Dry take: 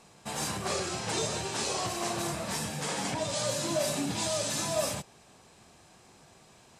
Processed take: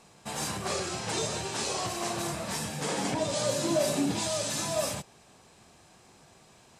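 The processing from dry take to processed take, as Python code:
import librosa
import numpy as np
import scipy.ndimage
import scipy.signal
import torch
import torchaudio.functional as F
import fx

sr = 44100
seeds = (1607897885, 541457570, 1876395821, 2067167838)

y = fx.peak_eq(x, sr, hz=350.0, db=6.0, octaves=1.7, at=(2.81, 4.19))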